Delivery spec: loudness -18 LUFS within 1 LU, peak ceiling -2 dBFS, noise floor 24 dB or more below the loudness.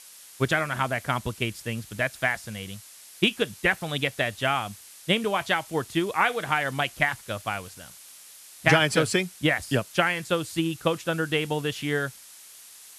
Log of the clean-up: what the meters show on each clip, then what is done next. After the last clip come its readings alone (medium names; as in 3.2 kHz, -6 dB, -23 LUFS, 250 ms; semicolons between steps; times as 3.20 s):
noise floor -48 dBFS; noise floor target -50 dBFS; loudness -26.0 LUFS; peak level -6.5 dBFS; loudness target -18.0 LUFS
-> noise print and reduce 6 dB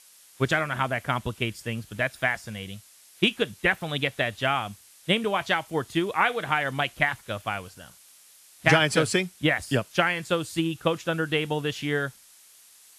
noise floor -54 dBFS; loudness -26.0 LUFS; peak level -6.5 dBFS; loudness target -18.0 LUFS
-> trim +8 dB; peak limiter -2 dBFS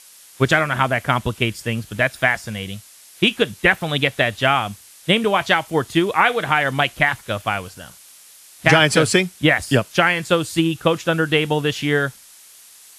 loudness -18.5 LUFS; peak level -2.0 dBFS; noise floor -46 dBFS